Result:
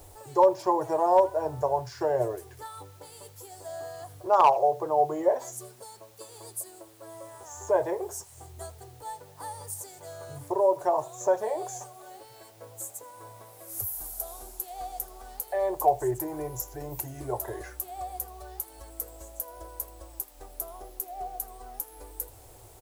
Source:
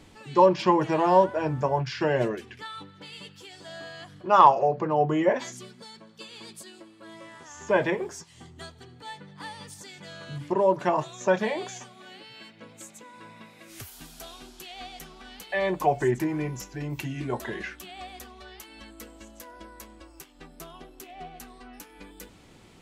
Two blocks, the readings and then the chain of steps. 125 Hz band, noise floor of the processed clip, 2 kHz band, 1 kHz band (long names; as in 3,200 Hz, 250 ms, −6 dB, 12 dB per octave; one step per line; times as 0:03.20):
−8.0 dB, −52 dBFS, −12.0 dB, −2.0 dB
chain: drawn EQ curve 110 Hz 0 dB, 190 Hz −29 dB, 380 Hz −5 dB, 730 Hz +1 dB, 2,800 Hz −25 dB, 12,000 Hz +12 dB
in parallel at 0 dB: downward compressor 12 to 1, threshold −38 dBFS, peak gain reduction 24.5 dB
on the sum: bit-depth reduction 10 bits, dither triangular
hard clipping −11 dBFS, distortion −25 dB
single-tap delay 81 ms −22.5 dB